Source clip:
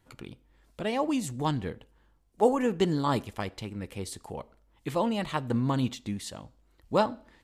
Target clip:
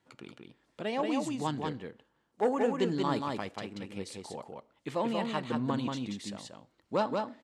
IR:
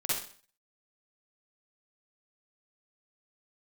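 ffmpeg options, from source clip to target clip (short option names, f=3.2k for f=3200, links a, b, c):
-af "asoftclip=type=tanh:threshold=-16dB,highpass=170,lowpass=7.3k,aecho=1:1:183:0.668,volume=-3dB"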